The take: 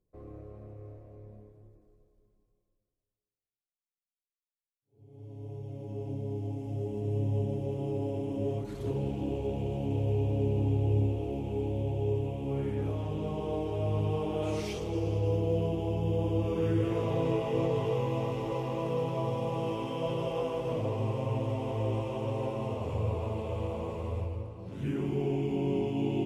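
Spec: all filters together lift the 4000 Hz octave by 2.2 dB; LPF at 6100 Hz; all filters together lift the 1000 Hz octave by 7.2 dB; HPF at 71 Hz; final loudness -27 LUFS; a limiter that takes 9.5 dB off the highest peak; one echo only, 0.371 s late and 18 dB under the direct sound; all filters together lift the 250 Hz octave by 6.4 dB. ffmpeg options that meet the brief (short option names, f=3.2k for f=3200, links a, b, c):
-af "highpass=71,lowpass=6.1k,equalizer=f=250:t=o:g=8,equalizer=f=1k:t=o:g=8,equalizer=f=4k:t=o:g=3,alimiter=limit=-22dB:level=0:latency=1,aecho=1:1:371:0.126,volume=4dB"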